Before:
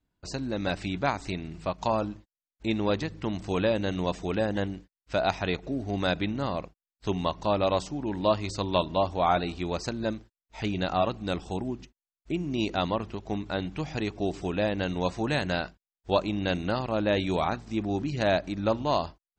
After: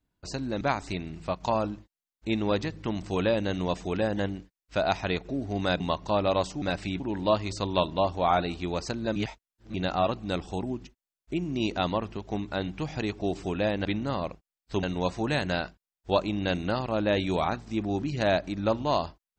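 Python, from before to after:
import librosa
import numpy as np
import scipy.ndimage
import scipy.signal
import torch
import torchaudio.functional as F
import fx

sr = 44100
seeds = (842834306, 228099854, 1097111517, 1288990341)

y = fx.edit(x, sr, fx.move(start_s=0.61, length_s=0.38, to_s=7.98),
    fx.move(start_s=6.18, length_s=0.98, to_s=14.83),
    fx.reverse_span(start_s=10.14, length_s=0.58), tone=tone)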